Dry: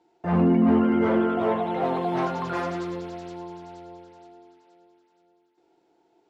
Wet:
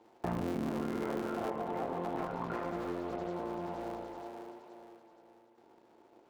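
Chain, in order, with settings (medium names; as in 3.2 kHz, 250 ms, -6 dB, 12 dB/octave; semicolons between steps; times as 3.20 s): cycle switcher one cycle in 3, muted; bass shelf 150 Hz -5 dB; tape echo 76 ms, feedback 89%, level -15 dB, low-pass 4.1 kHz; compression 8:1, threshold -38 dBFS, peak gain reduction 19.5 dB; treble shelf 2.4 kHz -5 dB, from 1.50 s -12 dB, from 3.81 s -7 dB; trim +5.5 dB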